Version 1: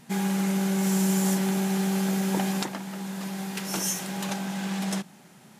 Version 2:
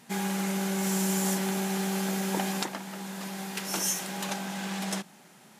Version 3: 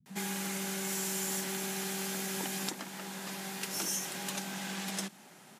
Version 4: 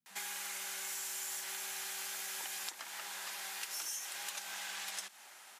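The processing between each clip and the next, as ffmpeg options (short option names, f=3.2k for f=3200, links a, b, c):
-af "highpass=f=300:p=1"
-filter_complex "[0:a]acrossover=split=340|1300|5100[a][b][c][d];[a]acompressor=threshold=-33dB:ratio=4[e];[b]acompressor=threshold=-48dB:ratio=4[f];[c]acompressor=threshold=-41dB:ratio=4[g];[d]acompressor=threshold=-35dB:ratio=4[h];[e][f][g][h]amix=inputs=4:normalize=0,acrossover=split=160[i][j];[j]adelay=60[k];[i][k]amix=inputs=2:normalize=0"
-af "highpass=950,acompressor=threshold=-43dB:ratio=3,volume=2.5dB"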